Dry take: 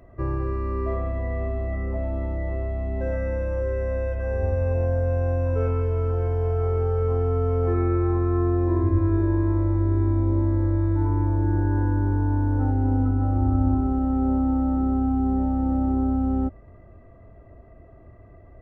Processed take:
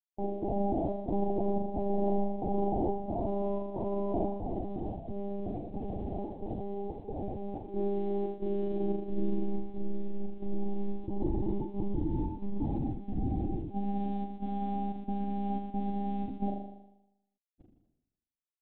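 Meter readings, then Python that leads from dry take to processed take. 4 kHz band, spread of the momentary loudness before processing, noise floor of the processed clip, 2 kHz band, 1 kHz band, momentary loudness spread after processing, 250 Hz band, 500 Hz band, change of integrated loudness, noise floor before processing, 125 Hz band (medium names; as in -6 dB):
no reading, 6 LU, under -85 dBFS, under -20 dB, -4.5 dB, 8 LU, -8.5 dB, -7.0 dB, -11.0 dB, -48 dBFS, -17.0 dB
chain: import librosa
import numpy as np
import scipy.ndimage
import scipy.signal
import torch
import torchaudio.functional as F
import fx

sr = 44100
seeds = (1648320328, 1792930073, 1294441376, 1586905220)

y = fx.quant_dither(x, sr, seeds[0], bits=6, dither='none')
y = scipy.signal.sosfilt(scipy.signal.butter(2, 120.0, 'highpass', fs=sr, output='sos'), y)
y = fx.low_shelf(y, sr, hz=280.0, db=9.5)
y = fx.over_compress(y, sr, threshold_db=-29.0, ratio=-1.0)
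y = 10.0 ** (-26.0 / 20.0) * (np.abs((y / 10.0 ** (-26.0 / 20.0) + 3.0) % 4.0 - 2.0) - 1.0)
y = scipy.signal.sosfilt(scipy.signal.ellip(4, 1.0, 40, 750.0, 'lowpass', fs=sr, output='sos'), y)
y = fx.fixed_phaser(y, sr, hz=510.0, stages=6)
y = fx.step_gate(y, sr, bpm=180, pattern='xxx..xxx', floor_db=-12.0, edge_ms=4.5)
y = fx.quant_companded(y, sr, bits=8)
y = fx.room_flutter(y, sr, wall_m=6.8, rt60_s=0.9)
y = fx.lpc_monotone(y, sr, seeds[1], pitch_hz=200.0, order=16)
y = F.gain(torch.from_numpy(y), 4.5).numpy()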